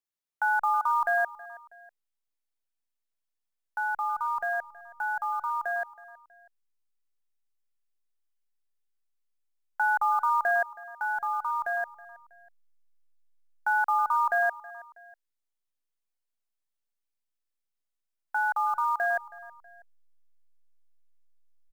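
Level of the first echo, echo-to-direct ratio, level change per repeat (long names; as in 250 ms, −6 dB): −19.5 dB, −18.5 dB, −7.0 dB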